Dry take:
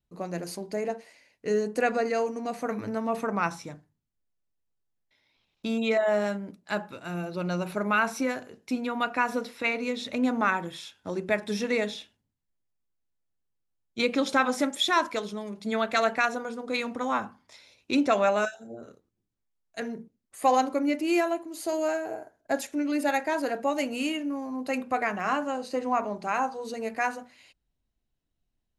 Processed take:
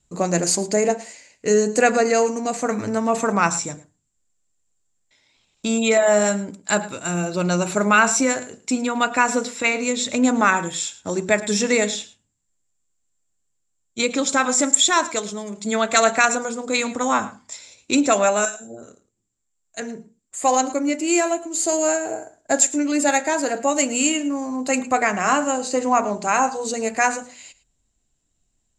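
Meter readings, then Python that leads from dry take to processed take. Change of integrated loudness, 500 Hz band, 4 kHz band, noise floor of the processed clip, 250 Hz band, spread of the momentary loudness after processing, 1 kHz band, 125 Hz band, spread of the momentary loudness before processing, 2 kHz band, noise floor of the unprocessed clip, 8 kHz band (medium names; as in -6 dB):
+8.0 dB, +7.5 dB, +8.0 dB, -72 dBFS, +7.0 dB, 12 LU, +7.0 dB, +9.0 dB, 12 LU, +7.5 dB, -80 dBFS, +22.0 dB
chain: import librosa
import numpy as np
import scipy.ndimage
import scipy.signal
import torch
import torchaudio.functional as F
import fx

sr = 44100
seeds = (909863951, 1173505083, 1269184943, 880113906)

y = fx.lowpass_res(x, sr, hz=7400.0, q=15.0)
y = y + 10.0 ** (-18.0 / 20.0) * np.pad(y, (int(109 * sr / 1000.0), 0))[:len(y)]
y = fx.rider(y, sr, range_db=10, speed_s=2.0)
y = F.gain(torch.from_numpy(y), 6.0).numpy()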